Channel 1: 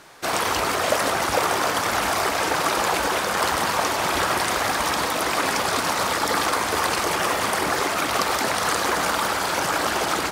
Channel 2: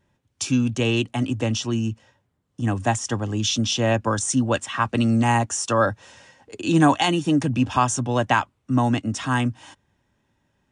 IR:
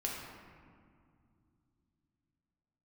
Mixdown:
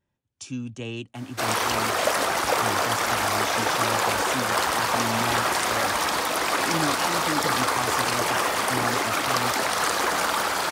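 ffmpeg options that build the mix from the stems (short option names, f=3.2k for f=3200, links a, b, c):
-filter_complex "[0:a]lowshelf=f=260:g=-5.5,adelay=1150,volume=-1dB[a];[1:a]volume=-12dB[b];[a][b]amix=inputs=2:normalize=0"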